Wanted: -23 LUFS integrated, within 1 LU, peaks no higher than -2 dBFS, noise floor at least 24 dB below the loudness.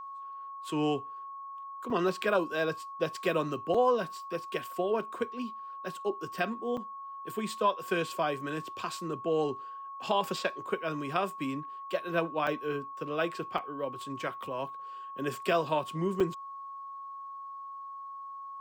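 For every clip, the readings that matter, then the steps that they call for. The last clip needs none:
dropouts 6; longest dropout 4.4 ms; steady tone 1.1 kHz; tone level -40 dBFS; loudness -33.5 LUFS; peak level -15.5 dBFS; loudness target -23.0 LUFS
-> interpolate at 1.90/3.74/6.77/12.47/13.58/16.20 s, 4.4 ms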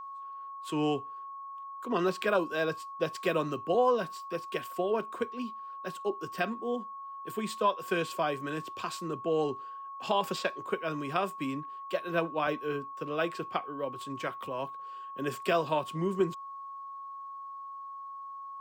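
dropouts 0; steady tone 1.1 kHz; tone level -40 dBFS
-> band-stop 1.1 kHz, Q 30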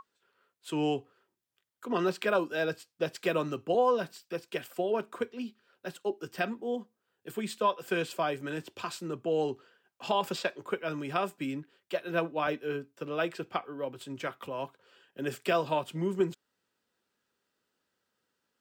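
steady tone not found; loudness -33.0 LUFS; peak level -15.5 dBFS; loudness target -23.0 LUFS
-> trim +10 dB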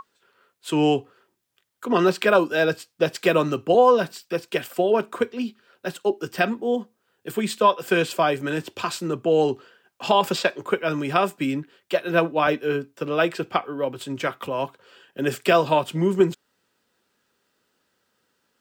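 loudness -23.0 LUFS; peak level -5.5 dBFS; noise floor -73 dBFS

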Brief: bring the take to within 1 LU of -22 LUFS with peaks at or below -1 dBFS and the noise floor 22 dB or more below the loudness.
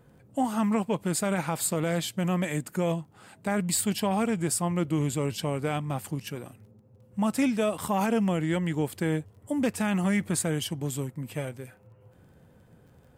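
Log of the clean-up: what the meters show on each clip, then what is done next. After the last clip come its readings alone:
tick rate 16 per s; loudness -28.5 LUFS; peak level -14.5 dBFS; loudness target -22.0 LUFS
-> de-click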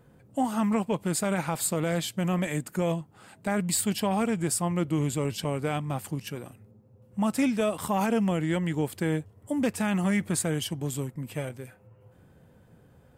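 tick rate 0.15 per s; loudness -28.5 LUFS; peak level -14.5 dBFS; loudness target -22.0 LUFS
-> trim +6.5 dB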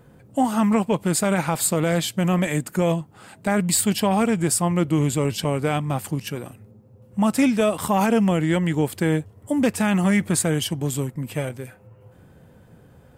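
loudness -22.0 LUFS; peak level -8.0 dBFS; noise floor -51 dBFS

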